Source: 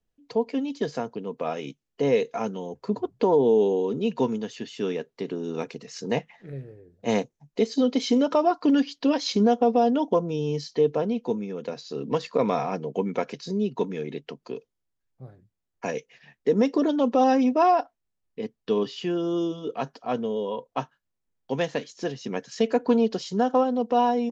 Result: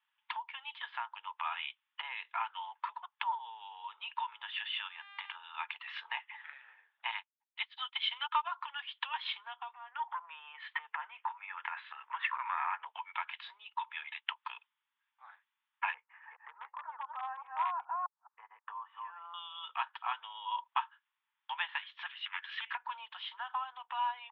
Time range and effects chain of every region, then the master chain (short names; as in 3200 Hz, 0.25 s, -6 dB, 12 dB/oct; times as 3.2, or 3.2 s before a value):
4.87–5.34 compressor 5:1, threshold -37 dBFS + buzz 400 Hz, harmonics 28, -60 dBFS -3 dB/oct
7.11–8.52 tilt shelf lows -8 dB, about 720 Hz + upward expander 2.5:1, over -38 dBFS
9.73–12.86 self-modulated delay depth 0.055 ms + compressor 16:1, threshold -32 dBFS + synth low-pass 1900 Hz, resonance Q 2.1
15.94–19.34 reverse delay 0.212 s, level -5 dB + LPF 1300 Hz 24 dB/oct + overloaded stage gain 12.5 dB
22.06–22.75 compressor 5:1, threshold -33 dBFS + HPF 1300 Hz + Doppler distortion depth 0.56 ms
whole clip: compressor 6:1, threshold -35 dBFS; Chebyshev band-pass 870–3500 Hz, order 5; gain +11.5 dB